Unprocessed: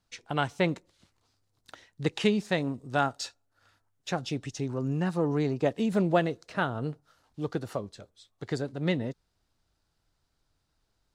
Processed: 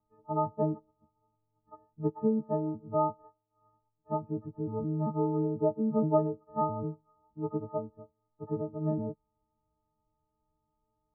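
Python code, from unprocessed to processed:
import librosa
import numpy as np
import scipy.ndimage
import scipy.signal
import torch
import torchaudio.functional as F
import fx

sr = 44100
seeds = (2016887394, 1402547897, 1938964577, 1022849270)

y = fx.freq_snap(x, sr, grid_st=6)
y = scipy.signal.sosfilt(scipy.signal.cheby1(6, 3, 1200.0, 'lowpass', fs=sr, output='sos'), y)
y = y * 10.0 ** (-1.0 / 20.0)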